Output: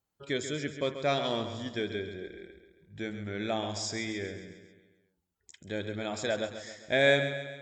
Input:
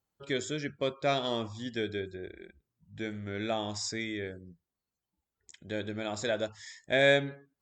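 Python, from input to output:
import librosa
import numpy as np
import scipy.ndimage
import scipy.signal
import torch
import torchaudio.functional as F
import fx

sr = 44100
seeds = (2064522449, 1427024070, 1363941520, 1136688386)

y = fx.echo_feedback(x, sr, ms=135, feedback_pct=53, wet_db=-10)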